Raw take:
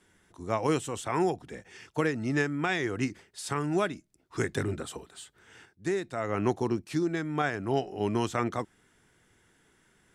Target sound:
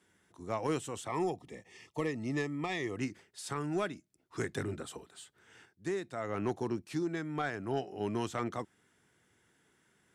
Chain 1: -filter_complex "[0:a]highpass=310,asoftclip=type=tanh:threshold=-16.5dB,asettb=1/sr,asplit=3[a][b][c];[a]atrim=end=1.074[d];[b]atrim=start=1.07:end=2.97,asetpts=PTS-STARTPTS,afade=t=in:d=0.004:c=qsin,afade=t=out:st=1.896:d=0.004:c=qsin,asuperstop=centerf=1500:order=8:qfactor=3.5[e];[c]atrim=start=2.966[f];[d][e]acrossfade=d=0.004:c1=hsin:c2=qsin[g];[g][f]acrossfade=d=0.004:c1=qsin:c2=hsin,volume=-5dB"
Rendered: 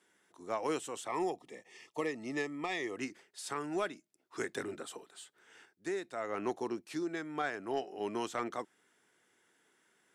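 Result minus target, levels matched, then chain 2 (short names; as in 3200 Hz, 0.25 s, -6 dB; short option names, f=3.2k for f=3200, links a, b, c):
125 Hz band -11.5 dB
-filter_complex "[0:a]highpass=84,asoftclip=type=tanh:threshold=-16.5dB,asettb=1/sr,asplit=3[a][b][c];[a]atrim=end=1.074[d];[b]atrim=start=1.07:end=2.97,asetpts=PTS-STARTPTS,afade=t=in:d=0.004:c=qsin,afade=t=out:st=1.896:d=0.004:c=qsin,asuperstop=centerf=1500:order=8:qfactor=3.5[e];[c]atrim=start=2.966[f];[d][e]acrossfade=d=0.004:c1=hsin:c2=qsin[g];[g][f]acrossfade=d=0.004:c1=qsin:c2=hsin,volume=-5dB"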